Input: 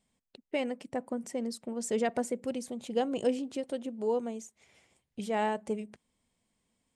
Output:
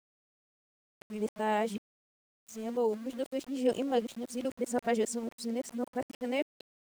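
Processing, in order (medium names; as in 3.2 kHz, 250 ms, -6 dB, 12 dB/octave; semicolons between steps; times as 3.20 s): reverse the whole clip; small samples zeroed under -47 dBFS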